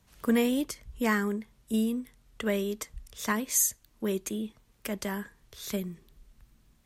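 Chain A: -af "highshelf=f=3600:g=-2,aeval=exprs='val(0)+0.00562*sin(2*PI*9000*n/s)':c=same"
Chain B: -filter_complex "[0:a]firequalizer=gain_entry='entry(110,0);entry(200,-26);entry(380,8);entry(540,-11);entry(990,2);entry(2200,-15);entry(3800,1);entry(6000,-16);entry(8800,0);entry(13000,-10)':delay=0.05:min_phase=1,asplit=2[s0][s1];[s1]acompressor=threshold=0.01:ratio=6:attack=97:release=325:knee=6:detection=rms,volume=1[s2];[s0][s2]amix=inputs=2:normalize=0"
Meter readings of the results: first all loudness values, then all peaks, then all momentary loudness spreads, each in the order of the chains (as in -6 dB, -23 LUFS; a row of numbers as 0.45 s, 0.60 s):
-31.0 LUFS, -32.0 LUFS; -13.5 dBFS, -16.0 dBFS; 16 LU, 13 LU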